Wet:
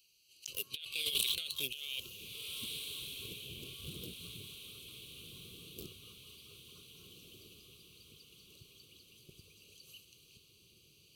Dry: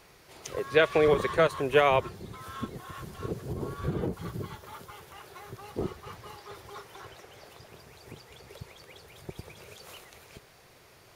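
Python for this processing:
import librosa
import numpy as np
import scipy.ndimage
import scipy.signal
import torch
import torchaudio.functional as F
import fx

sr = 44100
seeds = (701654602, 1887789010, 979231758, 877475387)

p1 = fx.wiener(x, sr, points=25)
p2 = fx.noise_reduce_blind(p1, sr, reduce_db=12)
p3 = scipy.signal.sosfilt(scipy.signal.ellip(4, 1.0, 40, 2900.0, 'highpass', fs=sr, output='sos'), p2)
p4 = fx.high_shelf(p3, sr, hz=8600.0, db=12.0)
p5 = fx.over_compress(p4, sr, threshold_db=-53.0, ratio=-1.0)
p6 = p5 + fx.echo_diffused(p5, sr, ms=1563, feedback_pct=53, wet_db=-7, dry=0)
y = p6 * 10.0 ** (14.0 / 20.0)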